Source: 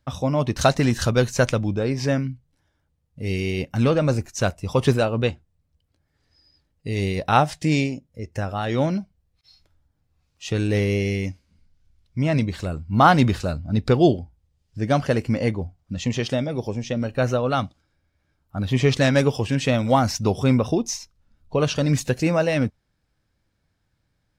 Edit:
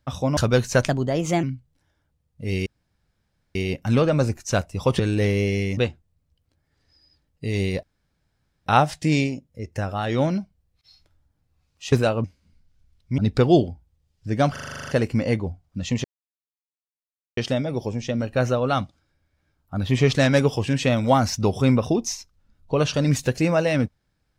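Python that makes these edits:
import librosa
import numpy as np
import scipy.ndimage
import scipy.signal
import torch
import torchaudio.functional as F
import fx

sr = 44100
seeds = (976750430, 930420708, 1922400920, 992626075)

y = fx.edit(x, sr, fx.cut(start_s=0.37, length_s=0.64),
    fx.speed_span(start_s=1.52, length_s=0.69, speed=1.25),
    fx.insert_room_tone(at_s=3.44, length_s=0.89),
    fx.swap(start_s=4.88, length_s=0.32, other_s=10.52, other_length_s=0.78),
    fx.insert_room_tone(at_s=7.26, length_s=0.83),
    fx.cut(start_s=12.24, length_s=1.45),
    fx.stutter(start_s=15.03, slice_s=0.04, count=10),
    fx.insert_silence(at_s=16.19, length_s=1.33), tone=tone)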